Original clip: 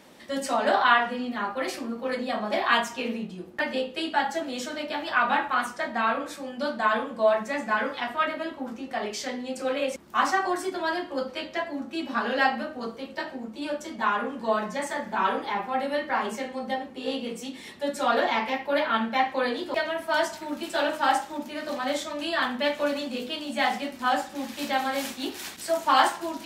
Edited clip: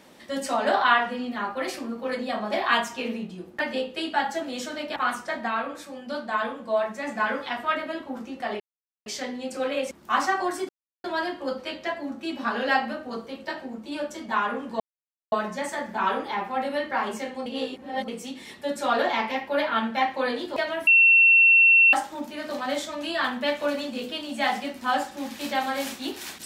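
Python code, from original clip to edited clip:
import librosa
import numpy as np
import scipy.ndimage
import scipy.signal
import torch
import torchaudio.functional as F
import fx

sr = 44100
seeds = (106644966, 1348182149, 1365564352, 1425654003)

y = fx.edit(x, sr, fx.cut(start_s=4.96, length_s=0.51),
    fx.clip_gain(start_s=5.99, length_s=1.59, db=-3.0),
    fx.insert_silence(at_s=9.11, length_s=0.46),
    fx.insert_silence(at_s=10.74, length_s=0.35),
    fx.insert_silence(at_s=14.5, length_s=0.52),
    fx.reverse_span(start_s=16.64, length_s=0.62),
    fx.bleep(start_s=20.05, length_s=1.06, hz=2710.0, db=-12.5), tone=tone)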